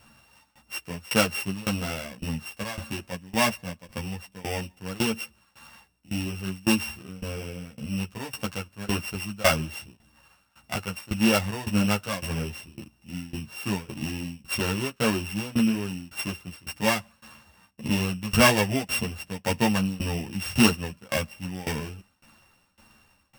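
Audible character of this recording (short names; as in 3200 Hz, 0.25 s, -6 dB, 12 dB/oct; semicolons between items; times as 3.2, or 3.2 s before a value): a buzz of ramps at a fixed pitch in blocks of 16 samples; tremolo saw down 1.8 Hz, depth 95%; a shimmering, thickened sound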